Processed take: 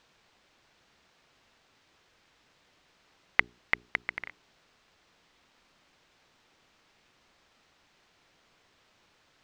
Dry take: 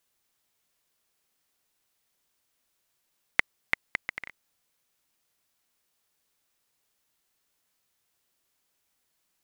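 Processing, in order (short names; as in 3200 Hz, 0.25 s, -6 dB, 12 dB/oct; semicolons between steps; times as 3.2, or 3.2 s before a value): notches 60/120/180/240/300/360/420 Hz; in parallel at -10.5 dB: requantised 8-bit, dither triangular; on the sum: air absorption 170 m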